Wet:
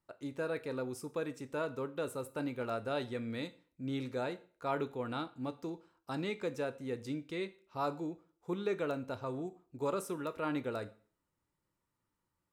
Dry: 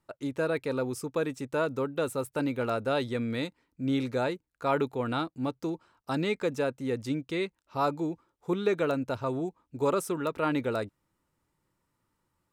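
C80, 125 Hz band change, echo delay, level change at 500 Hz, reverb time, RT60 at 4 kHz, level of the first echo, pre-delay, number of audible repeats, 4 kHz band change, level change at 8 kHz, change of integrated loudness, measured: 21.5 dB, −8.0 dB, no echo audible, −7.5 dB, 0.45 s, 0.40 s, no echo audible, 5 ms, no echo audible, −7.5 dB, −7.5 dB, −8.0 dB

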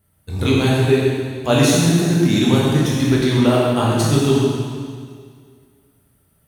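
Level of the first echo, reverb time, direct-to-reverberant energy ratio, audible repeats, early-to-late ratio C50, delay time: no echo audible, 2.0 s, −6.0 dB, no echo audible, −2.0 dB, no echo audible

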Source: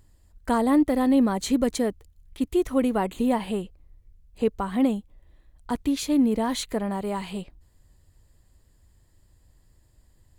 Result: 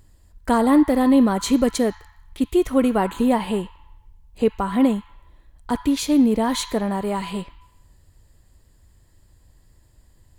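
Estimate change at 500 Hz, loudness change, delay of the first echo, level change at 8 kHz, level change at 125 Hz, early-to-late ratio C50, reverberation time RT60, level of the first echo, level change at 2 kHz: +4.5 dB, +4.5 dB, no echo audible, +4.5 dB, +4.5 dB, 11.5 dB, 1.1 s, no echo audible, +5.0 dB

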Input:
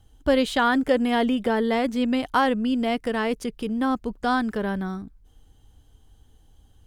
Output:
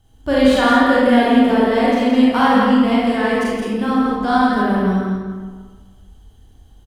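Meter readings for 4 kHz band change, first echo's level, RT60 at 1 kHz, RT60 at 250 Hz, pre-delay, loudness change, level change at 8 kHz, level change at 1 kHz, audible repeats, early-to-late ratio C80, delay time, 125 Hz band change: +6.5 dB, −4.5 dB, 1.5 s, 1.6 s, 28 ms, +8.5 dB, can't be measured, +8.5 dB, 1, −2.0 dB, 168 ms, can't be measured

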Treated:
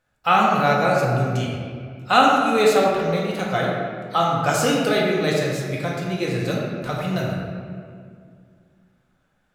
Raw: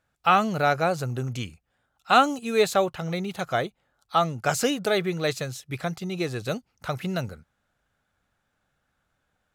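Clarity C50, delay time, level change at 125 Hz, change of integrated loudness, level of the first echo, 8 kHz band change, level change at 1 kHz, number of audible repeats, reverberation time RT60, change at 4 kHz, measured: 0.0 dB, no echo audible, +6.5 dB, +5.0 dB, no echo audible, +2.5 dB, +5.0 dB, no echo audible, 2.1 s, +4.0 dB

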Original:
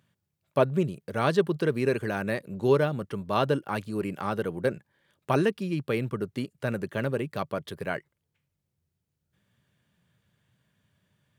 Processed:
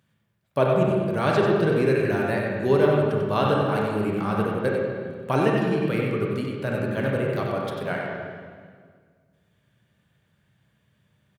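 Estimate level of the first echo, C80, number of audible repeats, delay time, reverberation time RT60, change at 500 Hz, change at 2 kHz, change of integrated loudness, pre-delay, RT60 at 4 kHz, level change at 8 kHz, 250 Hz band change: −6.0 dB, 0.0 dB, 1, 94 ms, 1.8 s, +5.0 dB, +4.5 dB, +5.0 dB, 26 ms, 1.6 s, can't be measured, +5.0 dB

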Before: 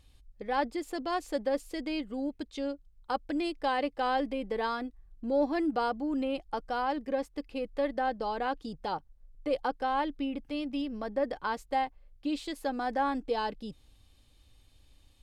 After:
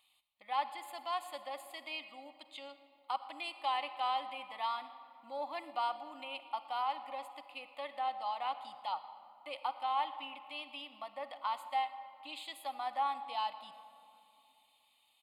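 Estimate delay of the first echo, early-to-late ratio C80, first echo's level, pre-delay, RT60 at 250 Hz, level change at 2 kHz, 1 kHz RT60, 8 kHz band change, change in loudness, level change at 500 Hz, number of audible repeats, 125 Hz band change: 116 ms, 12.0 dB, −21.5 dB, 40 ms, 3.4 s, −7.0 dB, 2.5 s, can't be measured, −6.5 dB, −14.5 dB, 1, below −25 dB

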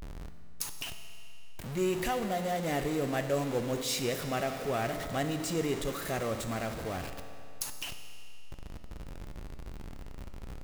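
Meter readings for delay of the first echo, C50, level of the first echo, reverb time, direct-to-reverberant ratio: no echo audible, 8.0 dB, no echo audible, 2.6 s, 6.5 dB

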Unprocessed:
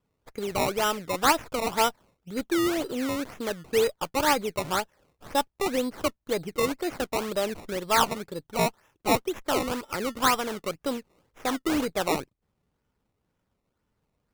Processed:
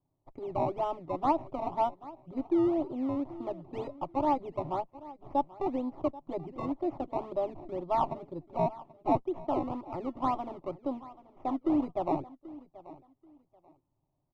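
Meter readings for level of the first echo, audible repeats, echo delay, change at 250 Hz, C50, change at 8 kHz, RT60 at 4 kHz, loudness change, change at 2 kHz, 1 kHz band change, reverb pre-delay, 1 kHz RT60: −18.5 dB, 2, 784 ms, −2.0 dB, no reverb audible, below −35 dB, no reverb audible, −5.5 dB, −23.5 dB, −4.0 dB, no reverb audible, no reverb audible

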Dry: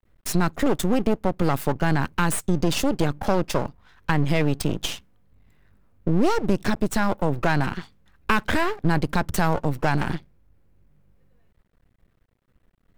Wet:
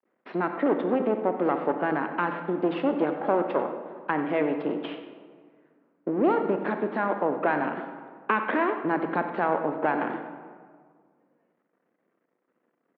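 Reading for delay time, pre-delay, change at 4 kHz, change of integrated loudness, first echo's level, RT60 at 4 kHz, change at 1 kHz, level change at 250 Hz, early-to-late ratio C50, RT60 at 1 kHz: 93 ms, 25 ms, −15.0 dB, −3.0 dB, −14.0 dB, 1.0 s, −0.5 dB, −3.5 dB, 7.0 dB, 1.7 s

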